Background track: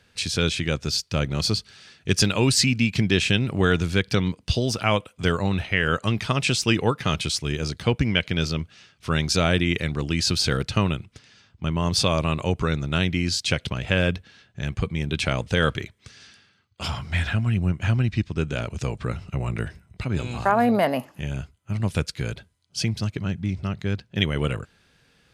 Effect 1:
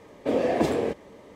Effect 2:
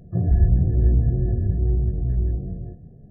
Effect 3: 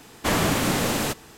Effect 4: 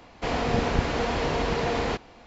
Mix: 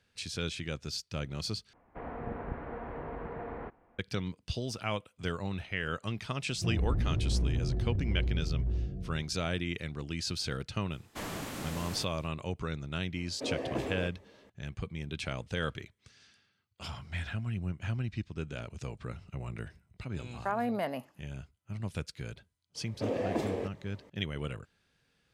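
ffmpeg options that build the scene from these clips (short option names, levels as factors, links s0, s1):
-filter_complex "[1:a]asplit=2[s0][s1];[0:a]volume=0.237[s2];[4:a]lowpass=f=1800:w=0.5412,lowpass=f=1800:w=1.3066[s3];[2:a]volume=7.08,asoftclip=hard,volume=0.141[s4];[s0]asplit=2[s5][s6];[s6]adelay=15,volume=0.531[s7];[s5][s7]amix=inputs=2:normalize=0[s8];[s2]asplit=2[s9][s10];[s9]atrim=end=1.734[s11];[s3]atrim=end=2.26,asetpts=PTS-STARTPTS,volume=0.2[s12];[s10]atrim=start=3.986[s13];[s4]atrim=end=3.1,asetpts=PTS-STARTPTS,volume=0.355,afade=t=in:d=0.004:c=hsin,afade=t=out:st=3.096:d=0.004:c=hsin,adelay=6490[s14];[3:a]atrim=end=1.37,asetpts=PTS-STARTPTS,volume=0.141,afade=t=in:d=0.004:c=hsin,afade=t=out:st=1.366:d=0.004:c=hsin,adelay=10910[s15];[s8]atrim=end=1.35,asetpts=PTS-STARTPTS,volume=0.237,afade=t=in:d=0.004:c=hsin,afade=t=out:st=1.346:d=0.004:c=hsin,adelay=13150[s16];[s1]atrim=end=1.35,asetpts=PTS-STARTPTS,volume=0.355,afade=t=in:d=0.004:c=hsin,afade=t=out:st=1.346:d=0.004:c=hsin,adelay=22750[s17];[s11][s12]acrossfade=d=0.004:c1=hsin:c2=hsin[s18];[s18][s13]acrossfade=d=0.004:c1=hsin:c2=hsin[s19];[s19][s14][s15][s16][s17]amix=inputs=5:normalize=0"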